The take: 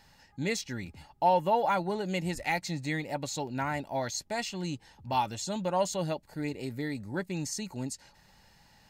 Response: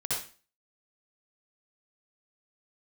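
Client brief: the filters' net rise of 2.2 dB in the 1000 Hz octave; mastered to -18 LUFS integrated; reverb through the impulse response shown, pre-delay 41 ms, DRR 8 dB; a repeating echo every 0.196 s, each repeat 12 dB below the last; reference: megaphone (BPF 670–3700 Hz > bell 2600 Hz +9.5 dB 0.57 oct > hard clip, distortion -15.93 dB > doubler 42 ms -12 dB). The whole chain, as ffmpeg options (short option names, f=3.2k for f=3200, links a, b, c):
-filter_complex "[0:a]equalizer=f=1k:t=o:g=4,aecho=1:1:196|392|588:0.251|0.0628|0.0157,asplit=2[a][b];[1:a]atrim=start_sample=2205,adelay=41[c];[b][c]afir=irnorm=-1:irlink=0,volume=-14dB[d];[a][d]amix=inputs=2:normalize=0,highpass=670,lowpass=3.7k,equalizer=f=2.6k:t=o:w=0.57:g=9.5,asoftclip=type=hard:threshold=-19.5dB,asplit=2[e][f];[f]adelay=42,volume=-12dB[g];[e][g]amix=inputs=2:normalize=0,volume=13.5dB"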